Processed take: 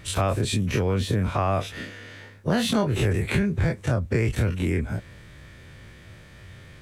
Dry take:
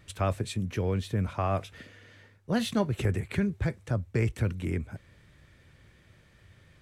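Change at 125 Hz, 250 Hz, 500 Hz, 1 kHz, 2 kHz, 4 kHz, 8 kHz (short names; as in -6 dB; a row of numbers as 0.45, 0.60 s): +5.5, +5.5, +6.0, +6.0, +8.0, +9.0, +10.0 dB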